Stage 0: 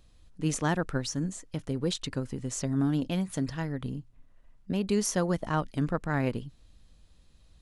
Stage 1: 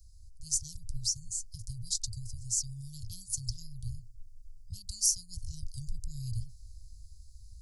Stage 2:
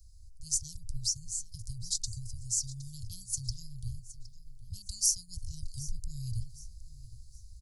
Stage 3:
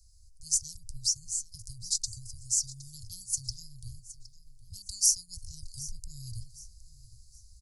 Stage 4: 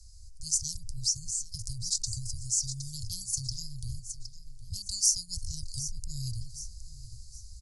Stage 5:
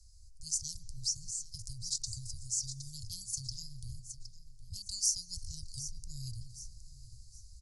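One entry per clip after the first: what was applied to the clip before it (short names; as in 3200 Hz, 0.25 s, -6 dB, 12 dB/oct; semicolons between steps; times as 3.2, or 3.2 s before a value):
Chebyshev band-stop 110–4700 Hz, order 5; in parallel at +2 dB: vocal rider within 4 dB 0.5 s
feedback echo 0.765 s, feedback 34%, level -17.5 dB
band shelf 7100 Hz +9 dB; gain -5.5 dB
LPF 9500 Hz 12 dB/oct; in parallel at -0.5 dB: negative-ratio compressor -41 dBFS, ratio -0.5
dynamic EQ 2800 Hz, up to +4 dB, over -45 dBFS, Q 0.73; reverb RT60 2.3 s, pre-delay 0.12 s, DRR 16.5 dB; gain -7 dB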